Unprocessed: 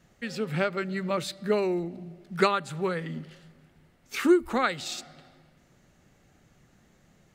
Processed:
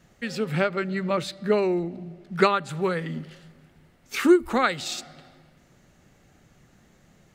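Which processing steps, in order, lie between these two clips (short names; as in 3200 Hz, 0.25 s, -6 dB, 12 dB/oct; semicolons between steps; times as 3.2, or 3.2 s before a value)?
0.61–2.69 high shelf 6700 Hz -8.5 dB; ending taper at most 370 dB/s; gain +3.5 dB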